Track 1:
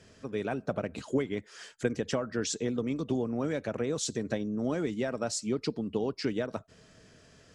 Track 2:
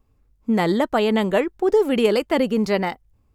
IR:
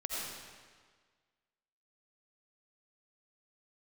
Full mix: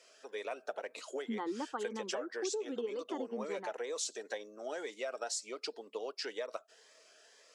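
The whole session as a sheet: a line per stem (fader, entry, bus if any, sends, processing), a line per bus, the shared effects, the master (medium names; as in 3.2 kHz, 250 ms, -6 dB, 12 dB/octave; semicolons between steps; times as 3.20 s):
+0.5 dB, 0.00 s, no send, high-pass 510 Hz 24 dB/octave; Shepard-style phaser rising 2 Hz
+1.5 dB, 0.80 s, no send, expander on every frequency bin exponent 1.5; elliptic band-pass 160–3300 Hz; static phaser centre 640 Hz, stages 6; auto duck -12 dB, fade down 1.95 s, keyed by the first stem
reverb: none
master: compression 6:1, threshold -34 dBFS, peak gain reduction 9 dB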